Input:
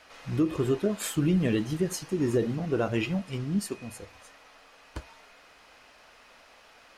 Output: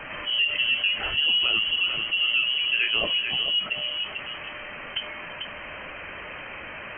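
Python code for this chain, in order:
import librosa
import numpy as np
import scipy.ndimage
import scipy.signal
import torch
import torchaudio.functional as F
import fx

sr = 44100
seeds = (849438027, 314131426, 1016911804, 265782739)

y = fx.freq_invert(x, sr, carrier_hz=3100)
y = y + 10.0 ** (-11.0 / 20.0) * np.pad(y, (int(444 * sr / 1000.0), 0))[:len(y)]
y = fx.env_flatten(y, sr, amount_pct=50)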